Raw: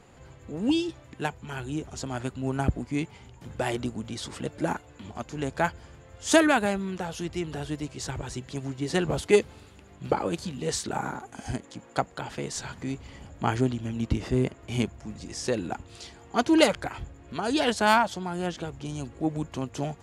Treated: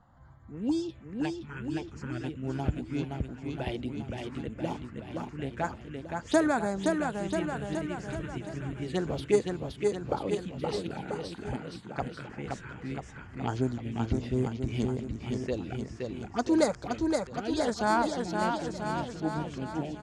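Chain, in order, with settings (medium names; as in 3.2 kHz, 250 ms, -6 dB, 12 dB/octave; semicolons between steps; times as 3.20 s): touch-sensitive phaser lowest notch 400 Hz, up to 2.9 kHz, full sweep at -20.5 dBFS; level-controlled noise filter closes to 2.4 kHz, open at -23 dBFS; bouncing-ball echo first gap 520 ms, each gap 0.9×, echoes 5; trim -4 dB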